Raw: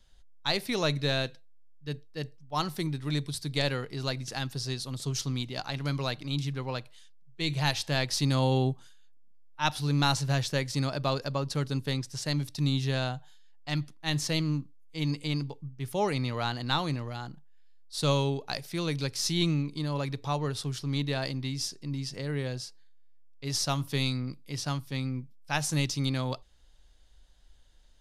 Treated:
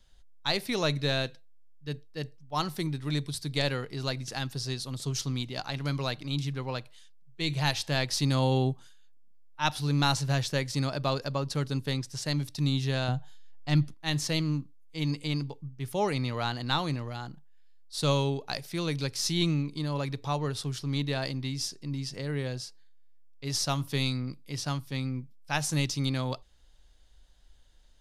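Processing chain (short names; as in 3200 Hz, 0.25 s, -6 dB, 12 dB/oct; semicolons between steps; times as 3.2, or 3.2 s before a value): 13.08–13.94 low shelf 390 Hz +8.5 dB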